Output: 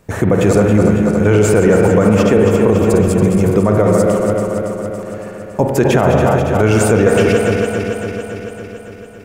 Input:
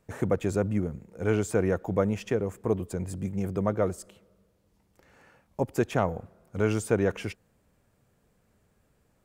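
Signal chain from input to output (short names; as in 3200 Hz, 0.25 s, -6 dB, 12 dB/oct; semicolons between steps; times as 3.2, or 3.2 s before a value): regenerating reverse delay 0.14 s, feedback 81%, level -7.5 dB; spring tank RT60 1.7 s, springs 38/49 ms, chirp 65 ms, DRR 5 dB; maximiser +17.5 dB; gain -1 dB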